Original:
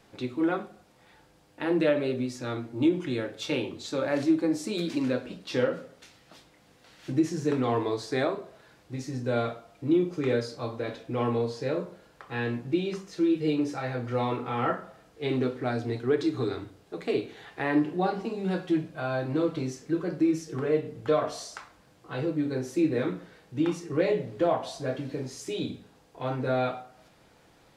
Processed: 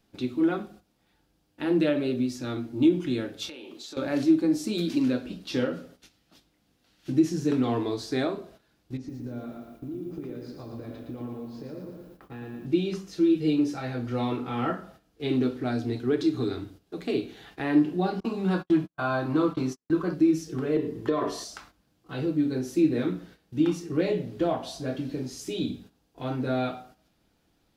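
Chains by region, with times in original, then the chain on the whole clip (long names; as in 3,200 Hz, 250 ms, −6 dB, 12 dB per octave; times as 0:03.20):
0:03.49–0:03.97: high-pass filter 400 Hz + downward compressor 8 to 1, threshold −39 dBFS
0:08.97–0:12.66: low-pass filter 1,100 Hz 6 dB per octave + downward compressor 10 to 1, threshold −36 dBFS + feedback echo at a low word length 115 ms, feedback 55%, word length 11 bits, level −4.5 dB
0:18.20–0:20.14: noise gate −38 dBFS, range −47 dB + parametric band 1,100 Hz +13.5 dB 0.85 octaves
0:20.76–0:21.44: hollow resonant body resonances 380/1,000/1,800 Hz, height 15 dB, ringing for 35 ms + downward compressor 4 to 1, threshold −20 dBFS
whole clip: noise gate −50 dBFS, range −11 dB; octave-band graphic EQ 125/500/1,000/2,000/4,000/8,000 Hz −8/−10/−9/−9/−3/−8 dB; level +8.5 dB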